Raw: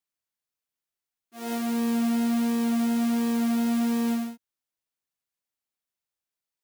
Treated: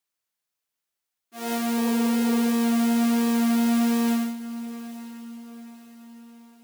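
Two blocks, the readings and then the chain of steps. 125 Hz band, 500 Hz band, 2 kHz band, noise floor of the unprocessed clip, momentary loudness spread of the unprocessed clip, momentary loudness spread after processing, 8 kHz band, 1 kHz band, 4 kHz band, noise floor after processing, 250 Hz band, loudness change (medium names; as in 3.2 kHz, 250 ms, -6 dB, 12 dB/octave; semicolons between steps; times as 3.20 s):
no reading, +4.5 dB, +5.0 dB, under -85 dBFS, 6 LU, 18 LU, +5.0 dB, +4.0 dB, +5.0 dB, -85 dBFS, +2.5 dB, +2.5 dB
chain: spectral replace 1.81–2.50 s, 320–1000 Hz; bass shelf 300 Hz -5.5 dB; echo that smears into a reverb 921 ms, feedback 44%, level -15.5 dB; trim +5 dB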